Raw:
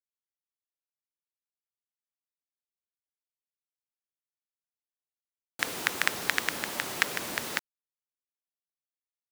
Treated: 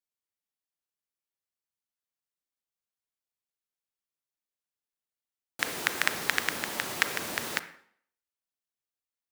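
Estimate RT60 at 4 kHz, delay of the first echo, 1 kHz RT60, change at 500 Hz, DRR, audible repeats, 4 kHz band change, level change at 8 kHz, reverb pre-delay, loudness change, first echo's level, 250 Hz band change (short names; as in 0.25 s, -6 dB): 0.55 s, none, 0.60 s, +0.5 dB, 11.0 dB, none, 0.0 dB, 0.0 dB, 32 ms, 0.0 dB, none, 0.0 dB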